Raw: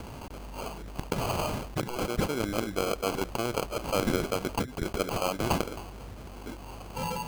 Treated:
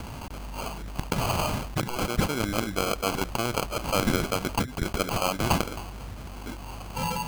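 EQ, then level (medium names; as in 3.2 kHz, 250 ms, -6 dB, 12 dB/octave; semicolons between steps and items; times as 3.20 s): peaking EQ 430 Hz -6 dB 1.2 oct; +5.0 dB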